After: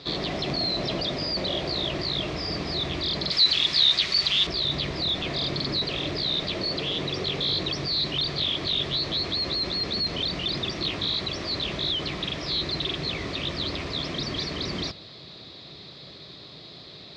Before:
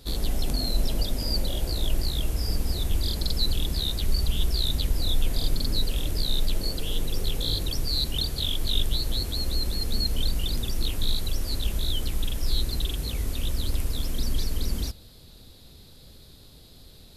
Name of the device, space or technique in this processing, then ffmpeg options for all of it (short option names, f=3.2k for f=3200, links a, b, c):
overdrive pedal into a guitar cabinet: -filter_complex "[0:a]asplit=2[a][b];[b]highpass=f=720:p=1,volume=25dB,asoftclip=type=tanh:threshold=-9.5dB[c];[a][c]amix=inputs=2:normalize=0,lowpass=f=2.2k:p=1,volume=-6dB,highpass=110,equalizer=f=150:t=q:w=4:g=4,equalizer=f=240:t=q:w=4:g=-8,equalizer=f=490:t=q:w=4:g=-8,equalizer=f=850:t=q:w=4:g=-9,equalizer=f=1.5k:t=q:w=4:g=-9,equalizer=f=2.9k:t=q:w=4:g=-6,lowpass=f=4.6k:w=0.5412,lowpass=f=4.6k:w=1.3066,asettb=1/sr,asplit=3[d][e][f];[d]atrim=end=3.314[g];[e]atrim=start=3.31:end=4.47,asetpts=PTS-STARTPTS,afade=t=in:d=0.004:c=qsin,afade=t=out:st=1.156:d=0.004:c=qsin,tiltshelf=f=1.1k:g=-9.5[h];[f]atrim=start=4.466[i];[g][h]acrossfade=d=0.004:c1=hsin:c2=qsin[j];[j][i]acrossfade=d=0.004:c1=qsin:c2=hsin"